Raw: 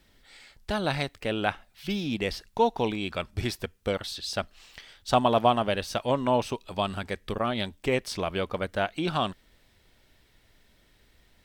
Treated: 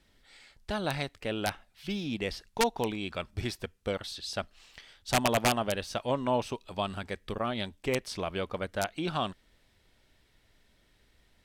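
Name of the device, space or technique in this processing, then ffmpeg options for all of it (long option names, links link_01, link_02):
overflowing digital effects unit: -af "aeval=exprs='(mod(4.22*val(0)+1,2)-1)/4.22':channel_layout=same,lowpass=13000,volume=-4dB"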